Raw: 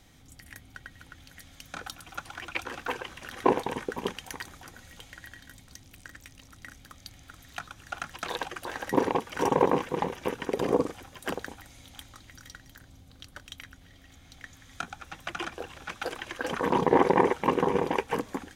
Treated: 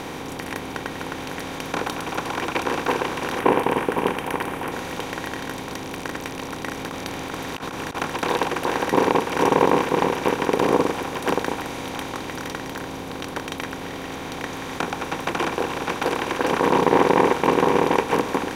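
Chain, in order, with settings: per-bin compression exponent 0.4; 3.39–4.72 band shelf 5200 Hz -8 dB 1.2 oct; 6.77–7.95 negative-ratio compressor -31 dBFS, ratio -0.5; gain +1 dB

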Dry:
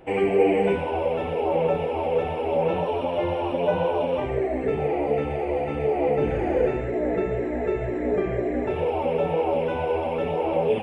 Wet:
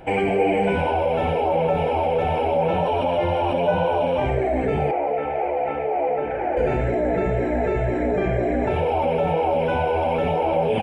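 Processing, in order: comb 1.3 ms, depth 40%; in parallel at -2 dB: negative-ratio compressor -28 dBFS, ratio -1; 4.91–6.57 on the sum: three-band isolator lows -17 dB, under 350 Hz, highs -19 dB, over 2500 Hz

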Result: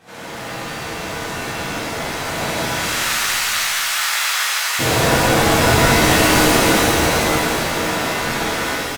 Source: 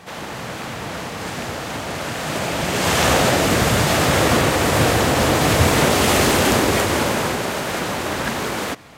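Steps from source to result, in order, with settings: 2.65–4.79 HPF 1100 Hz 24 dB/oct; frequency-shifting echo 0.215 s, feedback 48%, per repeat -55 Hz, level -6 dB; shimmer reverb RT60 1.2 s, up +7 st, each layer -2 dB, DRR -9 dB; gain -11 dB

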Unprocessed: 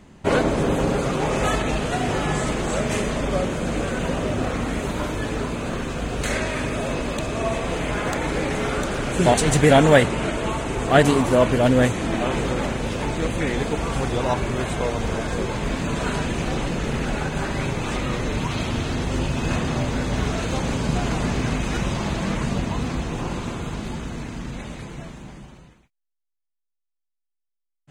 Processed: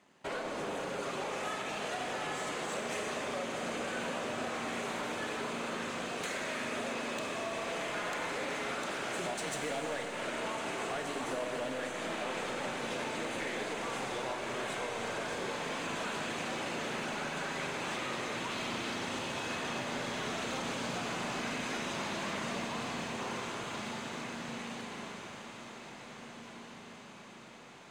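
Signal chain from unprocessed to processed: G.711 law mismatch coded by A; weighting filter A; compressor 6:1, threshold -28 dBFS, peak gain reduction 16.5 dB; soft clip -27 dBFS, distortion -16 dB; on a send: diffused feedback echo 1.709 s, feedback 60%, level -10 dB; on the sum: Schroeder reverb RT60 3.2 s, combs from 30 ms, DRR 4 dB; gain -5 dB

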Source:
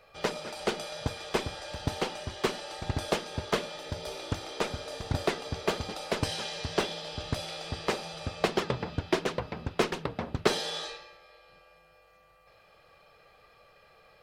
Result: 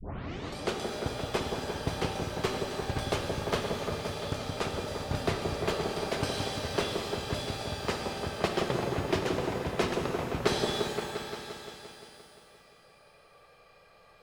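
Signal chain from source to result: tape start at the beginning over 0.57 s; repeats that get brighter 0.174 s, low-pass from 750 Hz, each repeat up 1 oct, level -3 dB; shimmer reverb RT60 1.8 s, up +12 st, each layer -8 dB, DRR 4.5 dB; gain -3 dB

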